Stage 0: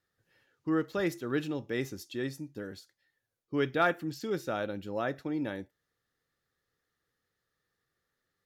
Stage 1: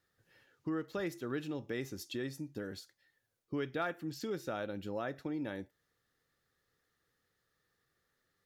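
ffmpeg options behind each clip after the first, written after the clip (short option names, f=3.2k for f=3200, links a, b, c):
-af "acompressor=threshold=-41dB:ratio=2.5,volume=2.5dB"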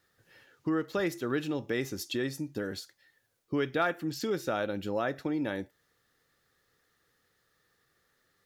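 -af "lowshelf=f=240:g=-3.5,volume=8dB"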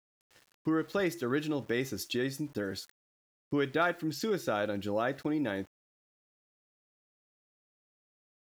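-af "aeval=exprs='val(0)*gte(abs(val(0)),0.00211)':c=same"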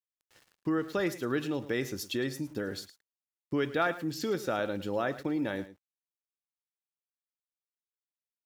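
-af "aecho=1:1:109:0.168"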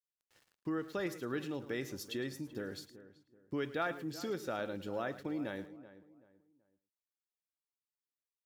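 -filter_complex "[0:a]asplit=2[a][b];[b]adelay=381,lowpass=f=1.7k:p=1,volume=-15dB,asplit=2[c][d];[d]adelay=381,lowpass=f=1.7k:p=1,volume=0.32,asplit=2[e][f];[f]adelay=381,lowpass=f=1.7k:p=1,volume=0.32[g];[a][c][e][g]amix=inputs=4:normalize=0,volume=-7dB"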